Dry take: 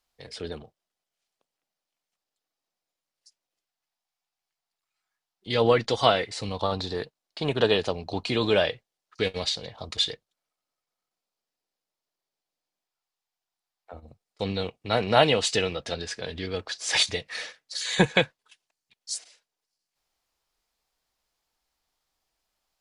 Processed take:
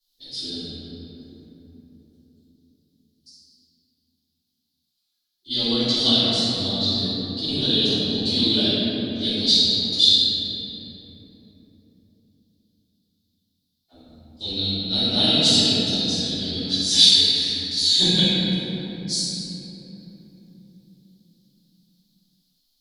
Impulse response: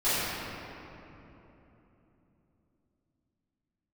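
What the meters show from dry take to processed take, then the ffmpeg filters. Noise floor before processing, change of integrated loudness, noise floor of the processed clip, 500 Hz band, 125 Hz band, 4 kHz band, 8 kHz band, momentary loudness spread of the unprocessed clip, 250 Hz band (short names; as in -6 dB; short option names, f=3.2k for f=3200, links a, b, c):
under -85 dBFS, +7.5 dB, -75 dBFS, -5.0 dB, +4.0 dB, +13.0 dB, +7.0 dB, 14 LU, +8.0 dB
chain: -filter_complex "[0:a]aexciter=amount=5.6:drive=3.6:freq=3.4k,equalizer=f=125:t=o:w=1:g=-4,equalizer=f=250:t=o:w=1:g=11,equalizer=f=500:t=o:w=1:g=-10,equalizer=f=1k:t=o:w=1:g=-11,equalizer=f=2k:t=o:w=1:g=-9,equalizer=f=4k:t=o:w=1:g=9,equalizer=f=8k:t=o:w=1:g=-9[a];[1:a]atrim=start_sample=2205,asetrate=38808,aresample=44100[b];[a][b]afir=irnorm=-1:irlink=0,volume=-13.5dB"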